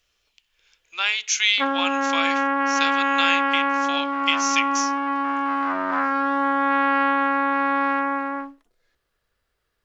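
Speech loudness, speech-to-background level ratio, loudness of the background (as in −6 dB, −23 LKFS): −24.0 LKFS, −2.0 dB, −22.0 LKFS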